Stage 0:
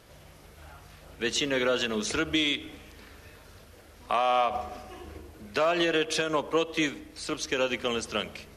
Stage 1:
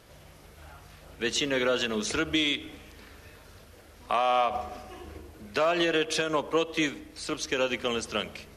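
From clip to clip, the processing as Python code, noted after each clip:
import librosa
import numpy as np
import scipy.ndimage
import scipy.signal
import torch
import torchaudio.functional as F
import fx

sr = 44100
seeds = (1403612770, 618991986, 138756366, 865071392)

y = x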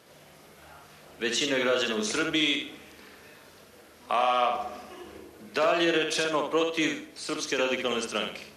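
y = scipy.signal.sosfilt(scipy.signal.butter(2, 170.0, 'highpass', fs=sr, output='sos'), x)
y = fx.echo_feedback(y, sr, ms=65, feedback_pct=29, wet_db=-5.0)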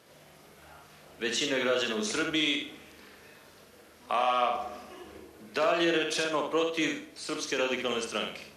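y = fx.doubler(x, sr, ms=41.0, db=-12.0)
y = F.gain(torch.from_numpy(y), -2.5).numpy()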